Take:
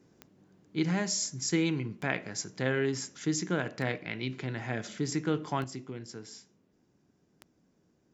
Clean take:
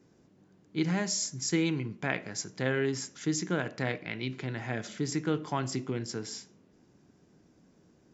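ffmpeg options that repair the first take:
ffmpeg -i in.wav -af "adeclick=threshold=4,asetnsamples=nb_out_samples=441:pad=0,asendcmd='5.64 volume volume 7.5dB',volume=0dB" out.wav

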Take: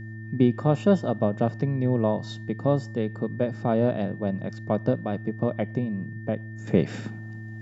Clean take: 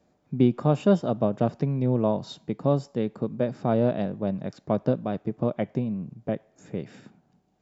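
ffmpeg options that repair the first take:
ffmpeg -i in.wav -af "bandreject=frequency=109.8:width_type=h:width=4,bandreject=frequency=219.6:width_type=h:width=4,bandreject=frequency=329.4:width_type=h:width=4,bandreject=frequency=1800:width=30,asetnsamples=nb_out_samples=441:pad=0,asendcmd='6.67 volume volume -11.5dB',volume=0dB" out.wav

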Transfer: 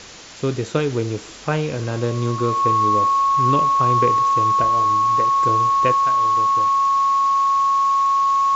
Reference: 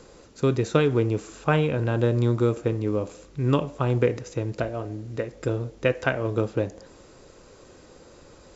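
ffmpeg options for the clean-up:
ffmpeg -i in.wav -af "bandreject=frequency=1100:width=30,afwtdn=0.016,asetnsamples=nb_out_samples=441:pad=0,asendcmd='5.95 volume volume 11dB',volume=0dB" out.wav

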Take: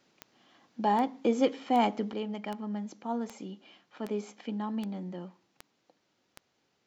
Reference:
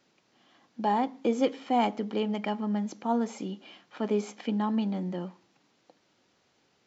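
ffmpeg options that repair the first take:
ffmpeg -i in.wav -af "adeclick=threshold=4,asetnsamples=nb_out_samples=441:pad=0,asendcmd='2.13 volume volume 6dB',volume=0dB" out.wav

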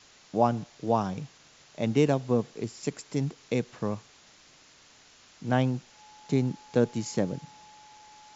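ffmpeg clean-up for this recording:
ffmpeg -i in.wav -af "bandreject=frequency=850:width=30,afwtdn=0.0025" out.wav

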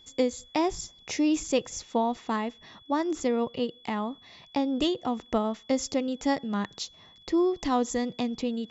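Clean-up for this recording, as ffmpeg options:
ffmpeg -i in.wav -af "bandreject=frequency=3400:width=30" out.wav

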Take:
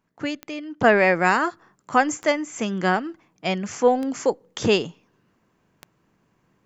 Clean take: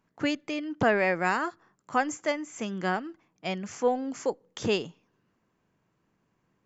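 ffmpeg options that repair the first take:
ffmpeg -i in.wav -af "adeclick=threshold=4,asetnsamples=nb_out_samples=441:pad=0,asendcmd='0.84 volume volume -7.5dB',volume=0dB" out.wav

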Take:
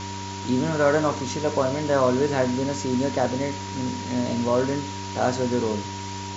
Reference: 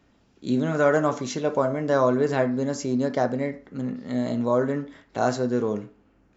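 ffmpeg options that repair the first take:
ffmpeg -i in.wav -af "bandreject=frequency=97.3:width_type=h:width=4,bandreject=frequency=194.6:width_type=h:width=4,bandreject=frequency=291.9:width_type=h:width=4,bandreject=frequency=389.2:width_type=h:width=4,bandreject=frequency=950:width=30,afwtdn=0.018" out.wav

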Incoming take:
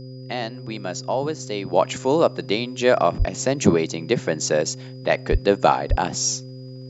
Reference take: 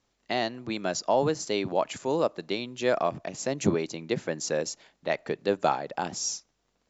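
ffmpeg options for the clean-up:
ffmpeg -i in.wav -filter_complex "[0:a]bandreject=frequency=129.1:width_type=h:width=4,bandreject=frequency=258.2:width_type=h:width=4,bandreject=frequency=387.3:width_type=h:width=4,bandreject=frequency=516.4:width_type=h:width=4,bandreject=frequency=4900:width=30,asplit=3[link_01][link_02][link_03];[link_01]afade=type=out:start_time=3.18:duration=0.02[link_04];[link_02]highpass=frequency=140:width=0.5412,highpass=frequency=140:width=1.3066,afade=type=in:start_time=3.18:duration=0.02,afade=type=out:start_time=3.3:duration=0.02[link_05];[link_03]afade=type=in:start_time=3.3:duration=0.02[link_06];[link_04][link_05][link_06]amix=inputs=3:normalize=0,asplit=3[link_07][link_08][link_09];[link_07]afade=type=out:start_time=5.31:duration=0.02[link_10];[link_08]highpass=frequency=140:width=0.5412,highpass=frequency=140:width=1.3066,afade=type=in:start_time=5.31:duration=0.02,afade=type=out:start_time=5.43:duration=0.02[link_11];[link_09]afade=type=in:start_time=5.43:duration=0.02[link_12];[link_10][link_11][link_12]amix=inputs=3:normalize=0,asplit=3[link_13][link_14][link_15];[link_13]afade=type=out:start_time=5.89:duration=0.02[link_16];[link_14]highpass=frequency=140:width=0.5412,highpass=frequency=140:width=1.3066,afade=type=in:start_time=5.89:duration=0.02,afade=type=out:start_time=6.01:duration=0.02[link_17];[link_15]afade=type=in:start_time=6.01:duration=0.02[link_18];[link_16][link_17][link_18]amix=inputs=3:normalize=0,asetnsamples=nb_out_samples=441:pad=0,asendcmd='1.73 volume volume -8dB',volume=0dB" out.wav

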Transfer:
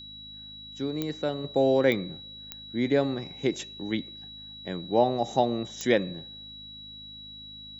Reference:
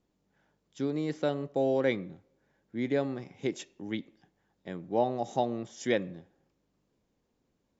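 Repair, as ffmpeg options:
ffmpeg -i in.wav -af "adeclick=threshold=4,bandreject=frequency=52.3:width_type=h:width=4,bandreject=frequency=104.6:width_type=h:width=4,bandreject=frequency=156.9:width_type=h:width=4,bandreject=frequency=209.2:width_type=h:width=4,bandreject=frequency=261.5:width_type=h:width=4,bandreject=frequency=3900:width=30,asetnsamples=nb_out_samples=441:pad=0,asendcmd='1.44 volume volume -5dB',volume=0dB" out.wav

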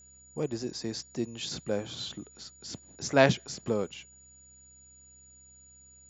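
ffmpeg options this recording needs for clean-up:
ffmpeg -i in.wav -af "bandreject=frequency=64.9:width_type=h:width=4,bandreject=frequency=129.8:width_type=h:width=4,bandreject=frequency=194.7:width_type=h:width=4,bandreject=frequency=259.6:width_type=h:width=4,bandreject=frequency=6900:width=30" out.wav

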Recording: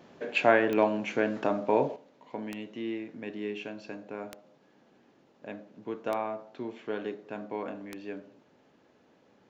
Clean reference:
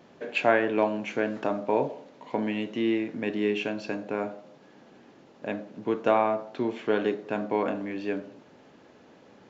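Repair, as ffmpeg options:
ffmpeg -i in.wav -af "adeclick=threshold=4,asetnsamples=nb_out_samples=441:pad=0,asendcmd='1.96 volume volume 9dB',volume=0dB" out.wav

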